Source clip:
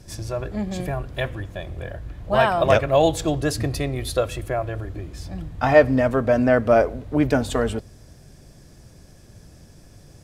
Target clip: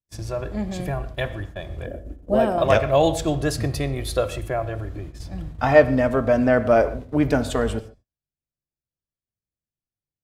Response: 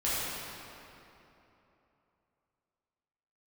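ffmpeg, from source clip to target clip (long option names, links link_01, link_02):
-filter_complex "[0:a]asettb=1/sr,asplit=3[link_01][link_02][link_03];[link_01]atrim=end=1.864[link_04];[link_02]atrim=start=1.86:end=2.58,asetpts=PTS-STARTPTS,afade=type=in:duration=0.004:curve=qsin,afade=type=out:start_time=0.716:duration=0.004:curve=qsin,equalizer=frequency=125:width_type=o:width=1:gain=-10,equalizer=frequency=250:width_type=o:width=1:gain=12,equalizer=frequency=500:width_type=o:width=1:gain=6,equalizer=frequency=1000:width_type=o:width=1:gain=-11,equalizer=frequency=2000:width_type=o:width=1:gain=-8,equalizer=frequency=4000:width_type=o:width=1:gain=-10[link_05];[link_03]atrim=start=2.576[link_06];[link_04][link_05]acrossfade=duration=0.004:curve1=hsin:curve2=qsin[link_07];[link_07][link_06]acrossfade=duration=0.004:curve1=qsin:curve2=hsin,agate=range=-49dB:threshold=-34dB:ratio=16:detection=peak,asplit=2[link_08][link_09];[1:a]atrim=start_sample=2205,afade=type=out:start_time=0.2:duration=0.01,atrim=end_sample=9261,highshelf=frequency=7600:gain=-11.5[link_10];[link_09][link_10]afir=irnorm=-1:irlink=0,volume=-18dB[link_11];[link_08][link_11]amix=inputs=2:normalize=0,volume=-1.5dB"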